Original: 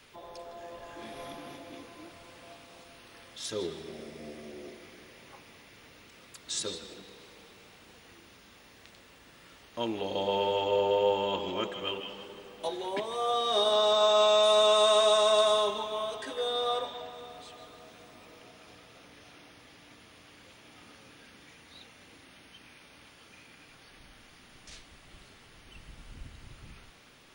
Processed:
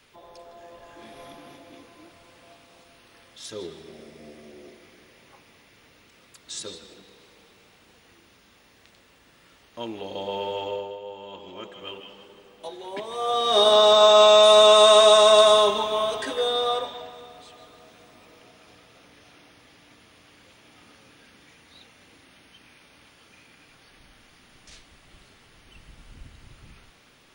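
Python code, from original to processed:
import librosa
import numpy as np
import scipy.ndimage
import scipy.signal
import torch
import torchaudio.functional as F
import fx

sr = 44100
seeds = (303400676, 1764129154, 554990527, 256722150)

y = fx.gain(x, sr, db=fx.line((10.68, -1.5), (11.01, -13.5), (11.89, -3.5), (12.78, -3.5), (13.65, 9.0), (16.22, 9.0), (17.32, 0.5)))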